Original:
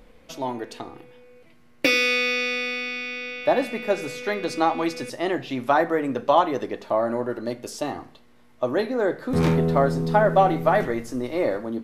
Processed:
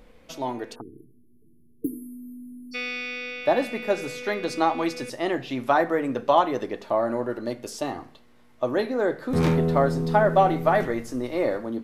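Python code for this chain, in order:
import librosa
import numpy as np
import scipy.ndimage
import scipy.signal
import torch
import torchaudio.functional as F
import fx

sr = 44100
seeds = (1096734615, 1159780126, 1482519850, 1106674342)

y = fx.spec_erase(x, sr, start_s=0.81, length_s=1.93, low_hz=470.0, high_hz=4000.0)
y = fx.cheby1_bandstop(y, sr, low_hz=1500.0, high_hz=9800.0, order=5, at=(0.74, 2.71), fade=0.02)
y = F.gain(torch.from_numpy(y), -1.0).numpy()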